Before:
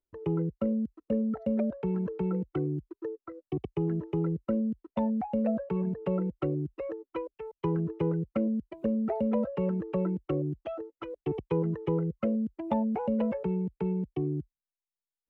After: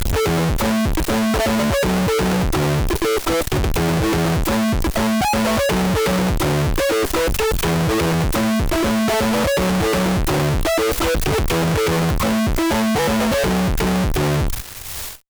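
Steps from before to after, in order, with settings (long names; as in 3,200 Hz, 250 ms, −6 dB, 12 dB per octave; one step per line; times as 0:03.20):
fade-out on the ending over 1.80 s
low shelf with overshoot 120 Hz +13 dB, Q 1.5
power curve on the samples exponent 0.35
fuzz pedal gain 55 dB, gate −48 dBFS
level −4 dB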